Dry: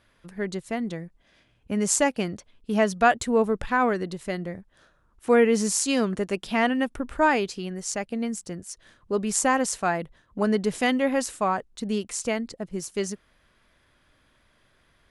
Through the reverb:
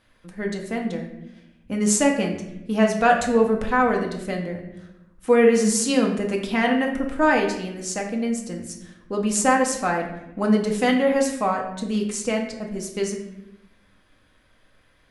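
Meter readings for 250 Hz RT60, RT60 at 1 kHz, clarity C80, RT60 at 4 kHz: 1.3 s, 0.75 s, 9.5 dB, 0.65 s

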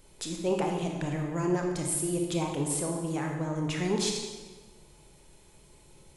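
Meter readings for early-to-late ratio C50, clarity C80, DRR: 3.5 dB, 5.5 dB, 1.5 dB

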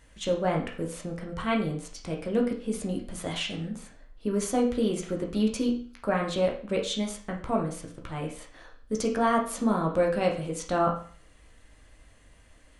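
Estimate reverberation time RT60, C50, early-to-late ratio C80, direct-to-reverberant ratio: 0.45 s, 7.5 dB, 12.5 dB, -0.5 dB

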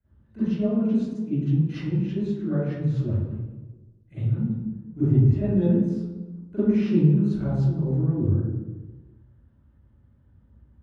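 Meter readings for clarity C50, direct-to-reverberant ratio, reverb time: -5.5 dB, -16.0 dB, 1.2 s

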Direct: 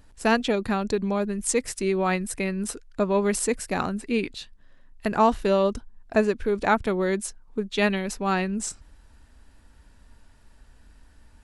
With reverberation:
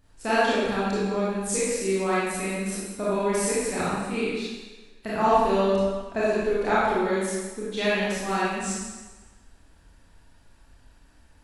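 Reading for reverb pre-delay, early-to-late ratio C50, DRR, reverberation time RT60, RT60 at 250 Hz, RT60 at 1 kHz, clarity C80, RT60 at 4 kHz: 25 ms, -3.5 dB, -9.5 dB, 1.3 s, 1.1 s, 1.3 s, -0.5 dB, 1.2 s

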